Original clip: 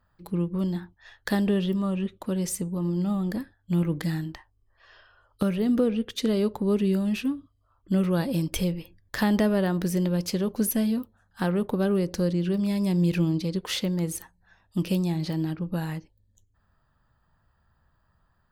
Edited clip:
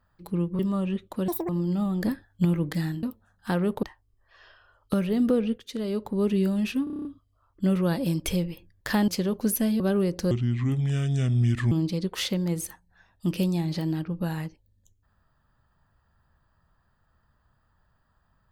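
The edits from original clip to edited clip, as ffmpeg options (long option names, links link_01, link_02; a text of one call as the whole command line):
ffmpeg -i in.wav -filter_complex "[0:a]asplit=20[link_01][link_02][link_03][link_04][link_05][link_06][link_07][link_08][link_09][link_10][link_11][link_12][link_13][link_14][link_15][link_16][link_17][link_18][link_19][link_20];[link_01]atrim=end=0.592[link_21];[link_02]atrim=start=1.688:end=2.384[link_22];[link_03]atrim=start=2.38:end=2.78,asetpts=PTS-STARTPTS,asetrate=84231,aresample=44100[link_23];[link_04]atrim=start=2.776:end=3.322[link_24];[link_05]atrim=start=3.318:end=3.742,asetpts=PTS-STARTPTS,volume=4.5dB[link_25];[link_06]atrim=start=3.738:end=4.322[link_26];[link_07]atrim=start=10.948:end=11.752[link_27];[link_08]atrim=start=4.318:end=6.07,asetpts=PTS-STARTPTS,afade=type=out:start_time=1.748:duration=0.004:curve=hsin:silence=0.251189[link_28];[link_09]atrim=start=6.07:end=7.362,asetpts=PTS-STARTPTS,afade=type=in:duration=0.75:silence=0.251189[link_29];[link_10]atrim=start=7.328:end=7.362[link_30];[link_11]atrim=start=7.328:end=7.362[link_31];[link_12]atrim=start=7.328:end=7.362[link_32];[link_13]atrim=start=7.328:end=7.362[link_33];[link_14]atrim=start=7.328:end=7.362[link_34];[link_15]atrim=start=7.328:end=7.362[link_35];[link_16]atrim=start=7.328:end=9.362[link_36];[link_17]atrim=start=10.228:end=10.952[link_37];[link_18]atrim=start=11.748:end=12.264[link_38];[link_19]atrim=start=12.26:end=13.23,asetpts=PTS-STARTPTS,asetrate=30429,aresample=44100[link_39];[link_20]atrim=start=13.226[link_40];[link_21][link_22]acrossfade=duration=0.004:curve1=hsin:curve2=hsin[link_41];[link_41][link_23]acrossfade=duration=0.004:curve1=hsin:curve2=hsin[link_42];[link_42][link_24]acrossfade=duration=0.004:curve1=hsin:curve2=hsin[link_43];[link_43][link_25]acrossfade=duration=0.004:curve1=hsin:curve2=hsin[link_44];[link_44][link_26]acrossfade=duration=0.004:curve1=hsin:curve2=hsin[link_45];[link_45][link_27]acrossfade=duration=0.004:curve1=hsin:curve2=hsin[link_46];[link_28][link_29]concat=n=2:v=0:a=1[link_47];[link_46][link_47]acrossfade=duration=0.004:curve1=hsin:curve2=hsin[link_48];[link_48][link_30]acrossfade=duration=0.004:curve1=hsin:curve2=hsin[link_49];[link_49][link_31]acrossfade=duration=0.004:curve1=hsin:curve2=hsin[link_50];[link_50][link_32]acrossfade=duration=0.004:curve1=hsin:curve2=hsin[link_51];[link_51][link_33]acrossfade=duration=0.004:curve1=hsin:curve2=hsin[link_52];[link_52][link_34]acrossfade=duration=0.004:curve1=hsin:curve2=hsin[link_53];[link_53][link_35]acrossfade=duration=0.004:curve1=hsin:curve2=hsin[link_54];[link_54][link_36]acrossfade=duration=0.004:curve1=hsin:curve2=hsin[link_55];[link_55][link_37]acrossfade=duration=0.004:curve1=hsin:curve2=hsin[link_56];[link_56][link_38]acrossfade=duration=0.004:curve1=hsin:curve2=hsin[link_57];[link_57][link_39]acrossfade=duration=0.004:curve1=hsin:curve2=hsin[link_58];[link_58][link_40]acrossfade=duration=0.004:curve1=hsin:curve2=hsin" out.wav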